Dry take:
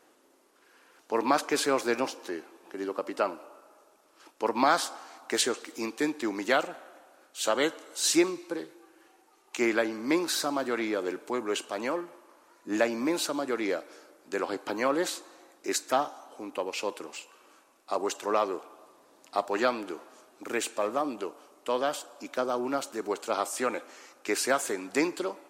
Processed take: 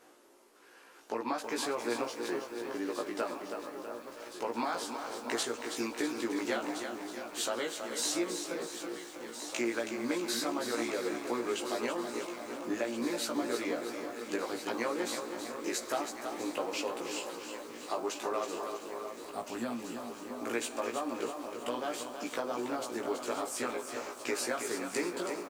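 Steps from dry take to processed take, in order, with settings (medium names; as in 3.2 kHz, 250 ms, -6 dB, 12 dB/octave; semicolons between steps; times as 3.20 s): time-frequency box 19.00–20.09 s, 290–7300 Hz -14 dB; compression 4:1, threshold -35 dBFS, peak gain reduction 14.5 dB; doubling 17 ms -2 dB; echo whose repeats swap between lows and highs 684 ms, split 1.4 kHz, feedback 84%, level -9.5 dB; bit-crushed delay 324 ms, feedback 55%, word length 9-bit, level -7 dB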